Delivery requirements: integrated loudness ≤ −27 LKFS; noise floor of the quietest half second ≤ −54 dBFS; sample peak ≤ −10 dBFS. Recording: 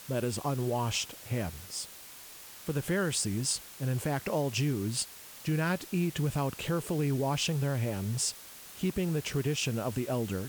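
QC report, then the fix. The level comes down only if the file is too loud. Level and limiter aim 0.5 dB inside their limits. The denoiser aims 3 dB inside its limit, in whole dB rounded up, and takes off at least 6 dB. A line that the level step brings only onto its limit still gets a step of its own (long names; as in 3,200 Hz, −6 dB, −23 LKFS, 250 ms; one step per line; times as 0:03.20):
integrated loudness −32.0 LKFS: in spec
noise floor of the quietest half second −49 dBFS: out of spec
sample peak −17.0 dBFS: in spec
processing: broadband denoise 8 dB, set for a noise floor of −49 dBFS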